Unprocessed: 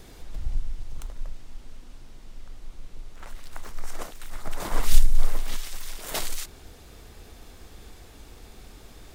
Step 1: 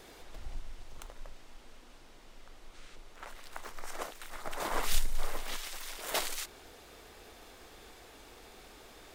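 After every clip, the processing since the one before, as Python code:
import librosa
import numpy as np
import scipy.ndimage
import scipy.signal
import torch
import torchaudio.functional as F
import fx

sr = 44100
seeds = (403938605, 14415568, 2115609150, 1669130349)

y = fx.spec_box(x, sr, start_s=2.74, length_s=0.21, low_hz=1200.0, high_hz=9800.0, gain_db=6)
y = fx.bass_treble(y, sr, bass_db=-14, treble_db=-4)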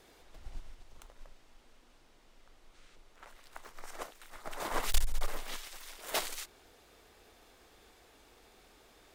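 y = fx.clip_asym(x, sr, top_db=-26.5, bottom_db=-18.0)
y = fx.upward_expand(y, sr, threshold_db=-45.0, expansion=1.5)
y = F.gain(torch.from_numpy(y), 4.0).numpy()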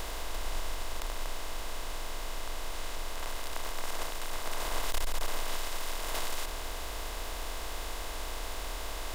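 y = fx.bin_compress(x, sr, power=0.2)
y = F.gain(torch.from_numpy(y), -7.5).numpy()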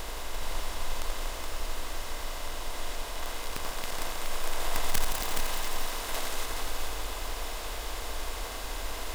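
y = (np.mod(10.0 ** (20.5 / 20.0) * x + 1.0, 2.0) - 1.0) / 10.0 ** (20.5 / 20.0)
y = y + 10.0 ** (-5.5 / 20.0) * np.pad(y, (int(421 * sr / 1000.0), 0))[:len(y)]
y = fx.echo_crushed(y, sr, ms=85, feedback_pct=80, bits=9, wet_db=-9)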